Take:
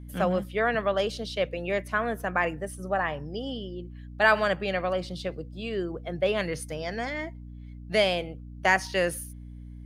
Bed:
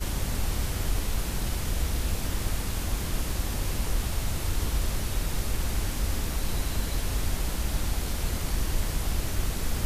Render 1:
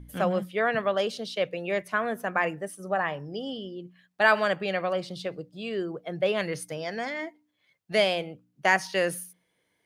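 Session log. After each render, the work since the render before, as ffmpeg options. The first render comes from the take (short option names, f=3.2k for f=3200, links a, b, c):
-af "bandreject=f=60:t=h:w=4,bandreject=f=120:t=h:w=4,bandreject=f=180:t=h:w=4,bandreject=f=240:t=h:w=4,bandreject=f=300:t=h:w=4"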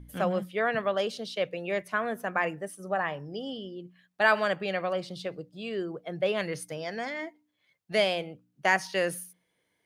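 -af "volume=-2dB"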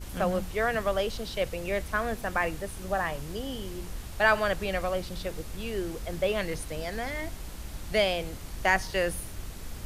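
-filter_complex "[1:a]volume=-11dB[a];[0:a][a]amix=inputs=2:normalize=0"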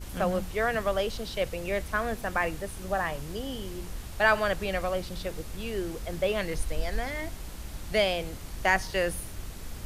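-filter_complex "[0:a]asplit=3[a][b][c];[a]afade=t=out:st=6.56:d=0.02[d];[b]asubboost=boost=4.5:cutoff=57,afade=t=in:st=6.56:d=0.02,afade=t=out:st=7.02:d=0.02[e];[c]afade=t=in:st=7.02:d=0.02[f];[d][e][f]amix=inputs=3:normalize=0"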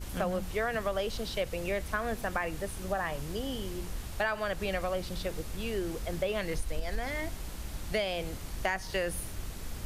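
-af "acompressor=threshold=-27dB:ratio=6"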